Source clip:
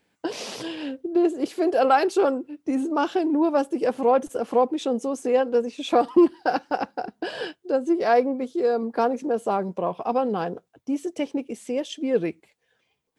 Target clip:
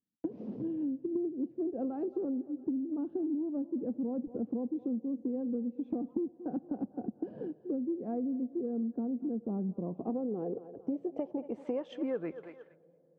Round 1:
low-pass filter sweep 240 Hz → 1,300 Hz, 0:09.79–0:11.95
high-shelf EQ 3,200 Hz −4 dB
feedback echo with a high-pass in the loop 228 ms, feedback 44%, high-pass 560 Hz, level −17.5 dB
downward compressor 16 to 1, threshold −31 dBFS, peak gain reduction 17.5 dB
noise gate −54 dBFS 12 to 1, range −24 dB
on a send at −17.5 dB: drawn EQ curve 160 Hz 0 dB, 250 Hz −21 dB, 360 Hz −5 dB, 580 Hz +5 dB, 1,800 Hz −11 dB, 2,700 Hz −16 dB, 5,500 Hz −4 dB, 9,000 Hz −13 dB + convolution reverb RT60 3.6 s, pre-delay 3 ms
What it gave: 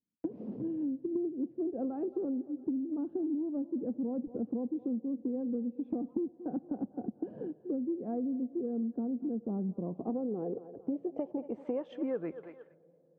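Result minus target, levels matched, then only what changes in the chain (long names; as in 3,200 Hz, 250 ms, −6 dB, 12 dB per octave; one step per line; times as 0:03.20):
4,000 Hz band −5.0 dB
change: high-shelf EQ 3,200 Hz +7 dB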